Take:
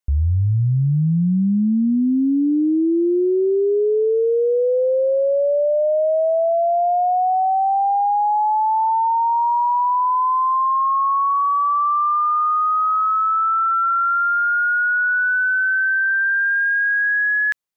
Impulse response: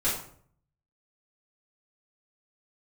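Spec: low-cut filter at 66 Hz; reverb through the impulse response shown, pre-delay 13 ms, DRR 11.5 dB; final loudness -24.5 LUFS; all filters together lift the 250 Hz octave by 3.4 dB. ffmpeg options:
-filter_complex "[0:a]highpass=66,equalizer=f=250:t=o:g=4.5,asplit=2[s0][s1];[1:a]atrim=start_sample=2205,adelay=13[s2];[s1][s2]afir=irnorm=-1:irlink=0,volume=0.0891[s3];[s0][s3]amix=inputs=2:normalize=0,volume=0.398"

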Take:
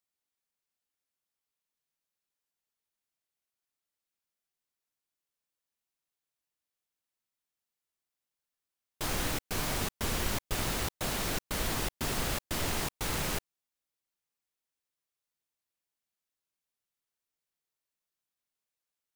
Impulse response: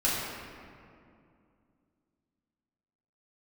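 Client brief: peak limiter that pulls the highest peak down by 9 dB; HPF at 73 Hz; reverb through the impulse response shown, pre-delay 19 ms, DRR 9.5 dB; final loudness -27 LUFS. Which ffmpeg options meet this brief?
-filter_complex "[0:a]highpass=73,alimiter=level_in=1.68:limit=0.0631:level=0:latency=1,volume=0.596,asplit=2[s0][s1];[1:a]atrim=start_sample=2205,adelay=19[s2];[s1][s2]afir=irnorm=-1:irlink=0,volume=0.0891[s3];[s0][s3]amix=inputs=2:normalize=0,volume=3.35"

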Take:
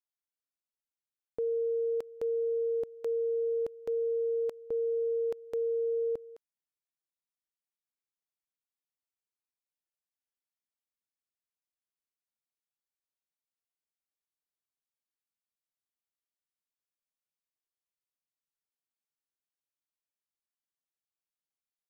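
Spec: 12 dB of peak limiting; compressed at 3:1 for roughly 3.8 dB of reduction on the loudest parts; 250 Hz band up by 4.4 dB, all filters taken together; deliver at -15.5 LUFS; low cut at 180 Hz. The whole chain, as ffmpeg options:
-af "highpass=180,equalizer=f=250:t=o:g=7.5,acompressor=threshold=0.0251:ratio=3,volume=18.8,alimiter=limit=0.299:level=0:latency=1"

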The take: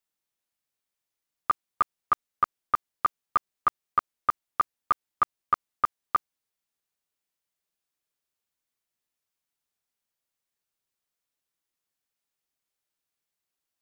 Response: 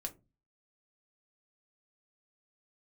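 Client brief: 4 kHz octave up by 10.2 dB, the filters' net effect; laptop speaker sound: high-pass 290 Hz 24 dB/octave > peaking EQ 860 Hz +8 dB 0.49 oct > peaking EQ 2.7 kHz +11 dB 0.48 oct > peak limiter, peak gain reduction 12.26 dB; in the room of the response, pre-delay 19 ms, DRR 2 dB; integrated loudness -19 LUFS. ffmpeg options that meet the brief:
-filter_complex "[0:a]equalizer=f=4000:t=o:g=6,asplit=2[s0][s1];[1:a]atrim=start_sample=2205,adelay=19[s2];[s1][s2]afir=irnorm=-1:irlink=0,volume=0.944[s3];[s0][s3]amix=inputs=2:normalize=0,highpass=f=290:w=0.5412,highpass=f=290:w=1.3066,equalizer=f=860:t=o:w=0.49:g=8,equalizer=f=2700:t=o:w=0.48:g=11,volume=5.62,alimiter=limit=0.473:level=0:latency=1"

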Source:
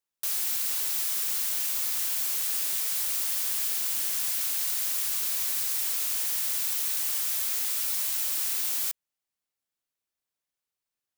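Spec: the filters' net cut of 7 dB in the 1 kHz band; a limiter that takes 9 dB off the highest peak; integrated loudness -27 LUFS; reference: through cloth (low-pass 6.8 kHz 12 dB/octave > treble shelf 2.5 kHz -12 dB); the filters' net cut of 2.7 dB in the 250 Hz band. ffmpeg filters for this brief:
-af "equalizer=f=250:t=o:g=-3,equalizer=f=1000:t=o:g=-6.5,alimiter=limit=0.0631:level=0:latency=1,lowpass=6800,highshelf=f=2500:g=-12,volume=13.3"

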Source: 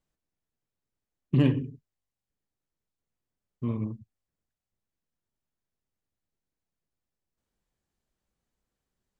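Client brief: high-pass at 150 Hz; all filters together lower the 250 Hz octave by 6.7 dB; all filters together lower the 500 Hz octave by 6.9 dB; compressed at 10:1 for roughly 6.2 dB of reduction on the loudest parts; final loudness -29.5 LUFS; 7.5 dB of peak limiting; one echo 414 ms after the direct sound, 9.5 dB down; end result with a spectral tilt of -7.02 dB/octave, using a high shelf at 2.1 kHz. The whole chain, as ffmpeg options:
-af "highpass=150,equalizer=f=250:t=o:g=-5.5,equalizer=f=500:t=o:g=-7,highshelf=f=2100:g=4,acompressor=threshold=0.0355:ratio=10,alimiter=level_in=1.68:limit=0.0631:level=0:latency=1,volume=0.596,aecho=1:1:414:0.335,volume=4.47"

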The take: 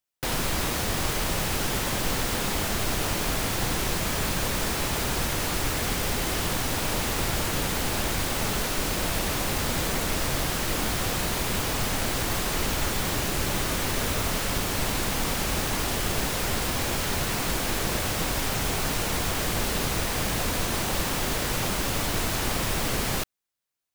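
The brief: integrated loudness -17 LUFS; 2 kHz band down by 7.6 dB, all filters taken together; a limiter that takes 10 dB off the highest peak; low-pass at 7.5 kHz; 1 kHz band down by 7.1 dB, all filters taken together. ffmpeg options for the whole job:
-af "lowpass=7500,equalizer=f=1000:t=o:g=-7.5,equalizer=f=2000:t=o:g=-7.5,volume=7.08,alimiter=limit=0.447:level=0:latency=1"

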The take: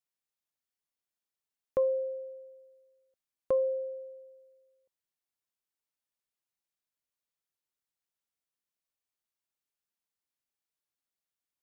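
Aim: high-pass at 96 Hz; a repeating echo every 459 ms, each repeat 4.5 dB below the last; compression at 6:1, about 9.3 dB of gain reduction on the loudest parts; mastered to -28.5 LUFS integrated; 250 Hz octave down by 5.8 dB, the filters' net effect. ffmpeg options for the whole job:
-af "highpass=96,equalizer=f=250:t=o:g=-8.5,acompressor=threshold=0.0178:ratio=6,aecho=1:1:459|918|1377|1836|2295|2754|3213|3672|4131:0.596|0.357|0.214|0.129|0.0772|0.0463|0.0278|0.0167|0.01,volume=3.98"

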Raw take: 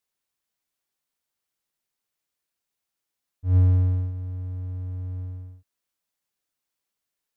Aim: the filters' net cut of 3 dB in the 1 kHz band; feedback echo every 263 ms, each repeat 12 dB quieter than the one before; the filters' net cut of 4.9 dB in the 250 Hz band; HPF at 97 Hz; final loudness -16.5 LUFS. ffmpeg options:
-af "highpass=97,equalizer=f=250:t=o:g=-5,equalizer=f=1000:t=o:g=-3.5,aecho=1:1:263|526|789:0.251|0.0628|0.0157,volume=4.22"

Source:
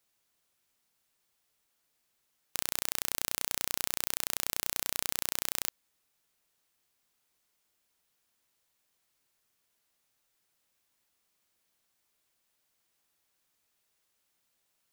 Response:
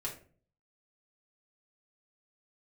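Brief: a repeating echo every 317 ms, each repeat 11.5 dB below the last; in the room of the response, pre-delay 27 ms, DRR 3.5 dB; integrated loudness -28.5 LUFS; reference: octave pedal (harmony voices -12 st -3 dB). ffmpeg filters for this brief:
-filter_complex "[0:a]aecho=1:1:317|634|951:0.266|0.0718|0.0194,asplit=2[s0][s1];[1:a]atrim=start_sample=2205,adelay=27[s2];[s1][s2]afir=irnorm=-1:irlink=0,volume=0.596[s3];[s0][s3]amix=inputs=2:normalize=0,asplit=2[s4][s5];[s5]asetrate=22050,aresample=44100,atempo=2,volume=0.708[s6];[s4][s6]amix=inputs=2:normalize=0,volume=1.12"

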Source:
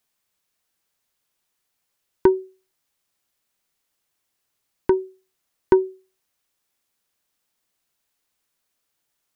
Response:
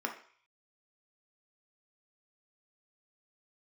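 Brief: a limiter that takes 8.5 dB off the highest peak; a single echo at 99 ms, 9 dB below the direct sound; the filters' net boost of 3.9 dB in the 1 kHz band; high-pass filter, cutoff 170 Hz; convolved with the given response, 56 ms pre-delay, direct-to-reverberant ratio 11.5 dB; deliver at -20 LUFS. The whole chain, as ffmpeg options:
-filter_complex "[0:a]highpass=170,equalizer=f=1000:t=o:g=4,alimiter=limit=0.316:level=0:latency=1,aecho=1:1:99:0.355,asplit=2[s0][s1];[1:a]atrim=start_sample=2205,adelay=56[s2];[s1][s2]afir=irnorm=-1:irlink=0,volume=0.158[s3];[s0][s3]amix=inputs=2:normalize=0,volume=1.88"

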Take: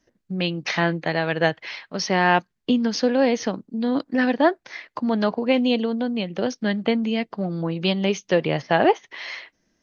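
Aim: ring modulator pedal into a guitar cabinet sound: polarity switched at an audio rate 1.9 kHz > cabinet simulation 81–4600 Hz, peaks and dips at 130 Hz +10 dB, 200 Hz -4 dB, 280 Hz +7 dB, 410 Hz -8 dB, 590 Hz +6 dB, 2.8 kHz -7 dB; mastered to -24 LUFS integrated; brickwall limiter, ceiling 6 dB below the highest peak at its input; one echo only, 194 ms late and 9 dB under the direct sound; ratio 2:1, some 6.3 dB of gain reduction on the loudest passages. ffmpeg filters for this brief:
-af "acompressor=threshold=0.0631:ratio=2,alimiter=limit=0.15:level=0:latency=1,aecho=1:1:194:0.355,aeval=exprs='val(0)*sgn(sin(2*PI*1900*n/s))':c=same,highpass=81,equalizer=f=130:t=q:w=4:g=10,equalizer=f=200:t=q:w=4:g=-4,equalizer=f=280:t=q:w=4:g=7,equalizer=f=410:t=q:w=4:g=-8,equalizer=f=590:t=q:w=4:g=6,equalizer=f=2800:t=q:w=4:g=-7,lowpass=f=4600:w=0.5412,lowpass=f=4600:w=1.3066,volume=1.5"

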